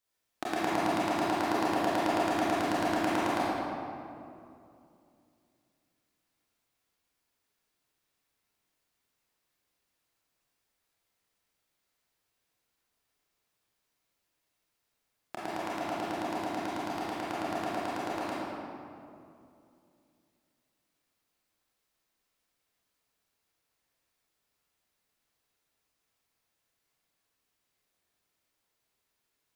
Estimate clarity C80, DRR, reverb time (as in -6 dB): -2.0 dB, -9.0 dB, 2.6 s